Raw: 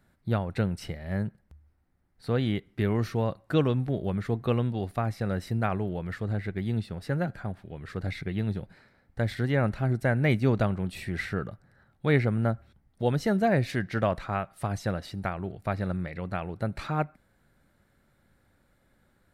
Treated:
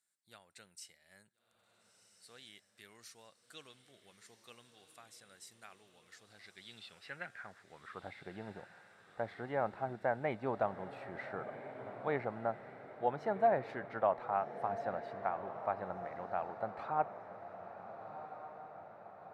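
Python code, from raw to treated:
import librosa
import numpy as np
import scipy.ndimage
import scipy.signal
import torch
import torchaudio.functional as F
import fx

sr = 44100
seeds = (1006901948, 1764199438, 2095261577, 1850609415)

y = fx.filter_sweep_bandpass(x, sr, from_hz=7800.0, to_hz=830.0, start_s=6.0, end_s=8.17, q=2.5)
y = fx.echo_diffused(y, sr, ms=1398, feedback_pct=56, wet_db=-11.0)
y = F.gain(torch.from_numpy(y), 1.0).numpy()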